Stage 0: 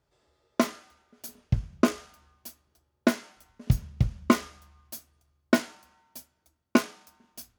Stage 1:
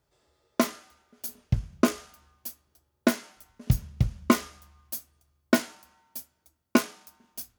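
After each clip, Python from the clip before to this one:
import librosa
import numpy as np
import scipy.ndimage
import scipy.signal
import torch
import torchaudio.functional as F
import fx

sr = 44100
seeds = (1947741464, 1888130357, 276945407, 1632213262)

y = fx.high_shelf(x, sr, hz=8500.0, db=8.0)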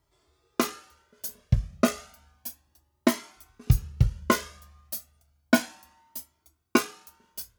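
y = fx.comb_cascade(x, sr, direction='rising', hz=0.32)
y = F.gain(torch.from_numpy(y), 5.5).numpy()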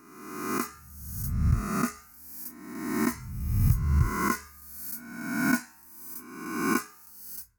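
y = fx.spec_swells(x, sr, rise_s=1.22)
y = fx.fixed_phaser(y, sr, hz=1400.0, stages=4)
y = F.gain(torch.from_numpy(y), -5.0).numpy()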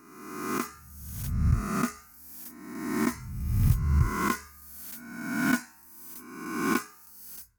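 y = fx.self_delay(x, sr, depth_ms=0.11)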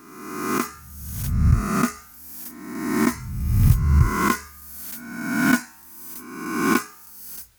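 y = fx.dmg_noise_colour(x, sr, seeds[0], colour='white', level_db=-68.0)
y = F.gain(torch.from_numpy(y), 7.0).numpy()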